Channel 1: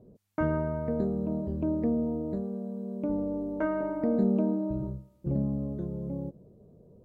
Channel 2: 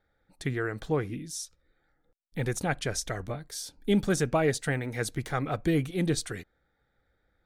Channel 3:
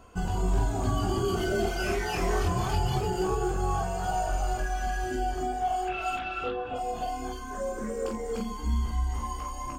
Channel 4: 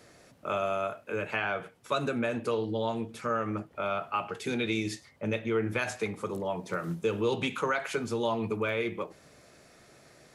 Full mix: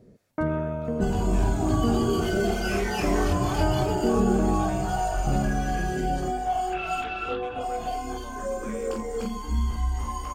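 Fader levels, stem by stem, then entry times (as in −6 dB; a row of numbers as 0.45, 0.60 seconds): +1.5, −19.5, +2.0, −17.5 decibels; 0.00, 0.00, 0.85, 0.00 seconds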